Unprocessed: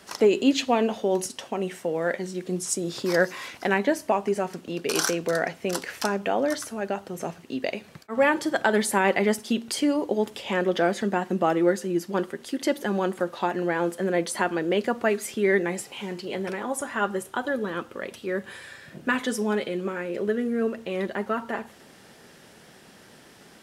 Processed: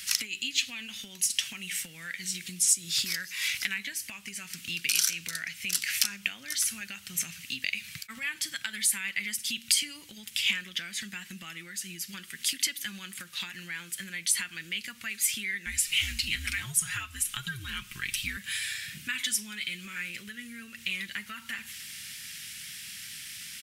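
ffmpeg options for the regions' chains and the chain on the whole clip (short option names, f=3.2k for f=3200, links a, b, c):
-filter_complex "[0:a]asettb=1/sr,asplit=3[a][b][c];[a]atrim=end=15.664[d];[b]atrim=start=15.66:end=18.37,asetpts=PTS-STARTPTS,afade=t=in:d=0.004:c=qsin,afade=t=out:st=2.706:d=0.004:c=qsin,afreqshift=-120,aecho=1:1:5.6:0.48,atrim=end_sample=119511[e];[c]atrim=start=18.366[f];[d][e]acrossfade=d=0.004:c1=hsin:c2=qsin[g];[g][f]acrossfade=d=0.004:c1=qsin:c2=hsin,highshelf=f=8.1k:g=9,acompressor=threshold=-31dB:ratio=10,firequalizer=gain_entry='entry(110,0);entry(420,-28);entry(730,-25);entry(1300,-5);entry(2200,12);entry(4500,10)':delay=0.05:min_phase=1,volume=1dB"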